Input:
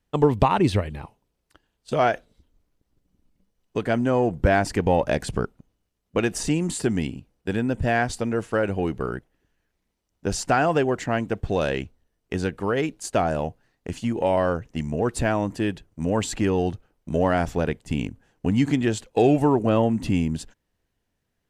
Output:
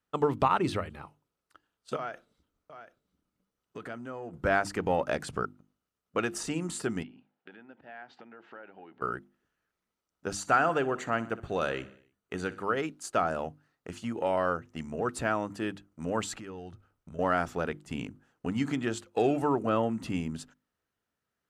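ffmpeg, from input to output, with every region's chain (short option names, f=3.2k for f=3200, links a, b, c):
-filter_complex "[0:a]asettb=1/sr,asplit=3[a][b][c];[a]atrim=end=1.964[d];[b]atrim=start=1.96:end=4.34,asetpts=PTS-STARTPTS,afade=t=in:d=0.004:c=qsin,afade=t=out:st=2.376:d=0.004:c=qsin,acompressor=threshold=-30dB:ratio=4:attack=3.2:release=140:knee=1:detection=peak,aecho=1:1:736:0.266,atrim=end_sample=104958[e];[c]atrim=start=4.336[f];[d][e]acrossfade=d=0.004:c1=hsin:c2=qsin[g];[g][f]acrossfade=d=0.004:c1=qsin:c2=hsin,asettb=1/sr,asplit=3[h][i][j];[h]atrim=end=7.034[k];[i]atrim=start=7.03:end=9.02,asetpts=PTS-STARTPTS,afade=t=in:d=0.004:c=qsin,afade=t=out:st=1.986:d=0.004:c=qsin,acompressor=threshold=-35dB:ratio=12:attack=3.2:release=140:knee=1:detection=peak,highpass=270,equalizer=f=470:t=q:w=4:g=-4,equalizer=f=820:t=q:w=4:g=7,equalizer=f=1.2k:t=q:w=4:g=-7,equalizer=f=1.7k:t=q:w=4:g=3,lowpass=f=3.6k:w=0.5412,lowpass=f=3.6k:w=1.3066[l];[j]atrim=start=9.016[m];[k][l]acrossfade=d=0.004:c1=hsin:c2=qsin[n];[n][m]acrossfade=d=0.004:c1=qsin:c2=hsin,asettb=1/sr,asplit=3[o][p][q];[o]atrim=end=10.364[r];[p]atrim=start=10.36:end=12.63,asetpts=PTS-STARTPTS,afade=t=in:d=0.004:c=qsin,afade=t=out:st=2.266:d=0.004:c=qsin,asuperstop=centerf=5200:order=12:qfactor=7.8,aecho=1:1:61|122|183|244|305:0.133|0.076|0.0433|0.0247|0.0141,atrim=end_sample=100107[s];[q]atrim=start=12.626[t];[r][s]acrossfade=d=0.004:c1=hsin:c2=qsin[u];[u][t]acrossfade=d=0.004:c1=qsin:c2=hsin,asettb=1/sr,asplit=3[v][w][x];[v]atrim=end=16.354[y];[w]atrim=start=16.35:end=17.19,asetpts=PTS-STARTPTS,afade=t=in:d=0.004:c=qsin,afade=t=out:st=0.836:d=0.004:c=qsin,asubboost=boost=11.5:cutoff=170,acompressor=threshold=-33dB:ratio=3:attack=3.2:release=140:knee=1:detection=peak[z];[x]atrim=start=17.186[aa];[y][z]acrossfade=d=0.004:c1=hsin:c2=qsin[ab];[ab][aa]acrossfade=d=0.004:c1=qsin:c2=hsin,highpass=f=160:p=1,equalizer=f=1.3k:t=o:w=0.38:g=11,bandreject=f=50:t=h:w=6,bandreject=f=100:t=h:w=6,bandreject=f=150:t=h:w=6,bandreject=f=200:t=h:w=6,bandreject=f=250:t=h:w=6,bandreject=f=300:t=h:w=6,bandreject=f=350:t=h:w=6,volume=-7dB"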